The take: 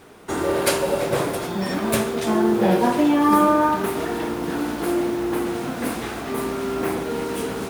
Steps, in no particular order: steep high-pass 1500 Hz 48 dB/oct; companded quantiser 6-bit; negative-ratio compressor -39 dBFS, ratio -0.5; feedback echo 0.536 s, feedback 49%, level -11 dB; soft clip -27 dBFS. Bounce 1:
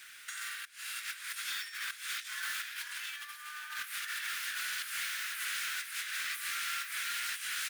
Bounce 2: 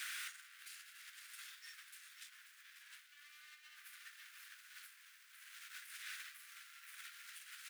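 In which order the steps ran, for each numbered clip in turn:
steep high-pass > companded quantiser > negative-ratio compressor > soft clip > feedback echo; soft clip > feedback echo > negative-ratio compressor > companded quantiser > steep high-pass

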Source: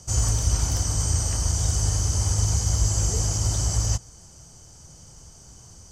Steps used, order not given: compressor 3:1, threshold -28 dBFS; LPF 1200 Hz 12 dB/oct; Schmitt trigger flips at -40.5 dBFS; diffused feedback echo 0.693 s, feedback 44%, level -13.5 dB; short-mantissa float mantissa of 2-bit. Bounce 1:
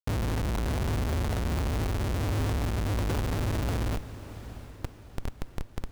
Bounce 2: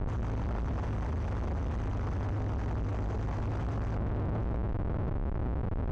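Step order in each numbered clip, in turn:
short-mantissa float > LPF > Schmitt trigger > compressor > diffused feedback echo; short-mantissa float > compressor > diffused feedback echo > Schmitt trigger > LPF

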